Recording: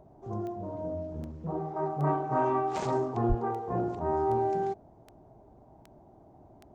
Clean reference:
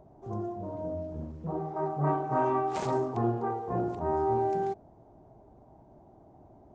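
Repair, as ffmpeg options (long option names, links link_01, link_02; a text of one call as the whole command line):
ffmpeg -i in.wav -filter_complex "[0:a]adeclick=threshold=4,asplit=3[link_01][link_02][link_03];[link_01]afade=type=out:start_time=3.28:duration=0.02[link_04];[link_02]highpass=frequency=140:width=0.5412,highpass=frequency=140:width=1.3066,afade=type=in:start_time=3.28:duration=0.02,afade=type=out:start_time=3.4:duration=0.02[link_05];[link_03]afade=type=in:start_time=3.4:duration=0.02[link_06];[link_04][link_05][link_06]amix=inputs=3:normalize=0" out.wav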